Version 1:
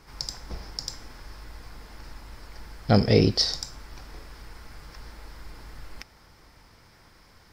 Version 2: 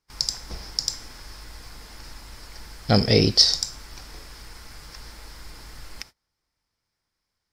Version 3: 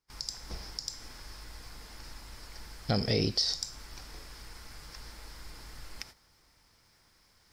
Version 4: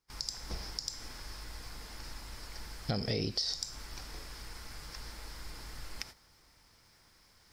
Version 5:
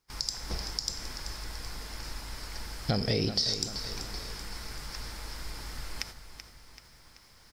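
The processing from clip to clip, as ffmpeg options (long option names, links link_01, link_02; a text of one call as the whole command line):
ffmpeg -i in.wav -af "agate=range=-29dB:threshold=-47dB:ratio=16:detection=peak,equalizer=frequency=8100:width_type=o:width=2.7:gain=9.5" out.wav
ffmpeg -i in.wav -af "areverse,acompressor=mode=upward:threshold=-42dB:ratio=2.5,areverse,alimiter=limit=-12.5dB:level=0:latency=1:release=177,volume=-5dB" out.wav
ffmpeg -i in.wav -af "acompressor=threshold=-33dB:ratio=3,volume=1.5dB" out.wav
ffmpeg -i in.wav -af "aecho=1:1:383|766|1149|1532|1915:0.282|0.144|0.0733|0.0374|0.0191,volume=5dB" out.wav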